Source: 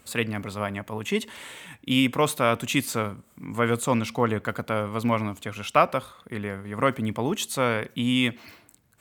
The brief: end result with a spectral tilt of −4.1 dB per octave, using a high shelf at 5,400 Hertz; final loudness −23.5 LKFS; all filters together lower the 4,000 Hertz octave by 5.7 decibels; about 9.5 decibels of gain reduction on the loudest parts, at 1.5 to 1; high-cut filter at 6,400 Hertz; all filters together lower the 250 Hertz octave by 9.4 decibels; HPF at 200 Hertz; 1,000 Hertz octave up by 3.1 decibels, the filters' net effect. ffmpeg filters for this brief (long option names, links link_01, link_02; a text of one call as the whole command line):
ffmpeg -i in.wav -af "highpass=200,lowpass=6400,equalizer=frequency=250:width_type=o:gain=-9,equalizer=frequency=1000:width_type=o:gain=5,equalizer=frequency=4000:width_type=o:gain=-6.5,highshelf=frequency=5400:gain=-4.5,acompressor=threshold=-38dB:ratio=1.5,volume=11dB" out.wav